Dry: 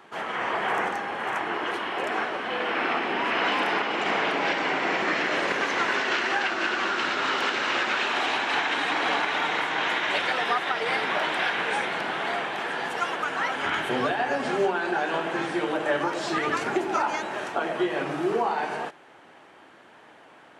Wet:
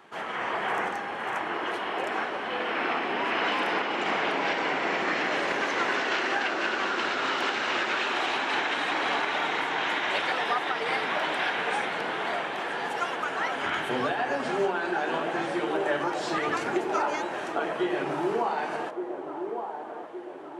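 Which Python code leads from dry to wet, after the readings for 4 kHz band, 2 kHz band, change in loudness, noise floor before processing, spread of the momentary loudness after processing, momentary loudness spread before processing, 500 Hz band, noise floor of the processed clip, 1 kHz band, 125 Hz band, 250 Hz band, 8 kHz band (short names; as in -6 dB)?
-2.5 dB, -2.5 dB, -2.0 dB, -52 dBFS, 5 LU, 5 LU, -1.0 dB, -37 dBFS, -1.5 dB, -2.5 dB, -1.5 dB, -2.5 dB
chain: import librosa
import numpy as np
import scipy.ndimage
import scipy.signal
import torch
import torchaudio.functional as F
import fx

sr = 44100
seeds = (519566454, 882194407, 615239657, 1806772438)

y = fx.echo_wet_bandpass(x, sr, ms=1168, feedback_pct=51, hz=510.0, wet_db=-5.5)
y = y * 10.0 ** (-2.5 / 20.0)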